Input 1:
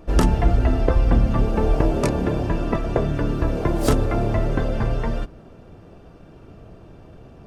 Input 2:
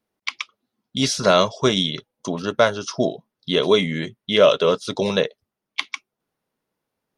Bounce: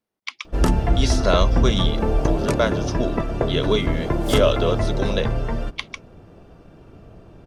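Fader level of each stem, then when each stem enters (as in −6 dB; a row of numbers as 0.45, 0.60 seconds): −1.0, −4.5 decibels; 0.45, 0.00 seconds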